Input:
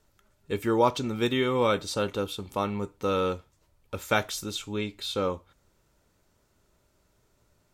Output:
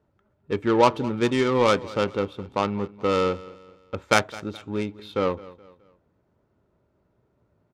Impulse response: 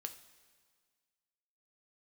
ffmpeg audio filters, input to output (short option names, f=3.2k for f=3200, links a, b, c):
-af "highpass=85,highshelf=f=6.1k:g=-7.5,adynamicsmooth=sensitivity=1:basefreq=910,aecho=1:1:211|422|633:0.106|0.0424|0.0169,crystalizer=i=5:c=0,volume=4dB"